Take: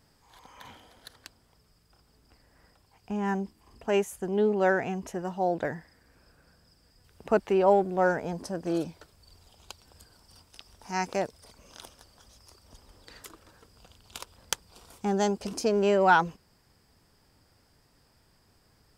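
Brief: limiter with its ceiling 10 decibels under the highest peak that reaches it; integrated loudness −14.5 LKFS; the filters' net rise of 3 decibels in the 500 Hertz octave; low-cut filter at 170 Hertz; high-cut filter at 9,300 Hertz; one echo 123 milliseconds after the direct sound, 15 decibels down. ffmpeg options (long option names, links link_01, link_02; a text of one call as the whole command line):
ffmpeg -i in.wav -af "highpass=170,lowpass=9300,equalizer=frequency=500:width_type=o:gain=4,alimiter=limit=-17.5dB:level=0:latency=1,aecho=1:1:123:0.178,volume=14.5dB" out.wav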